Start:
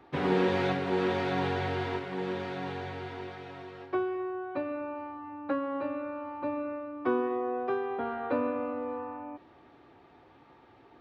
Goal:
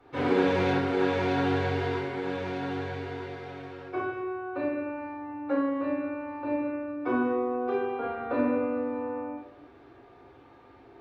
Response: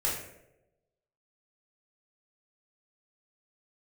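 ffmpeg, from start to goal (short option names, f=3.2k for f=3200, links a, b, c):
-filter_complex "[0:a]bandreject=f=50:t=h:w=6,bandreject=f=100:t=h:w=6[a];[1:a]atrim=start_sample=2205,afade=t=out:st=0.33:d=0.01,atrim=end_sample=14994,asetrate=36162,aresample=44100[b];[a][b]afir=irnorm=-1:irlink=0,volume=-6dB"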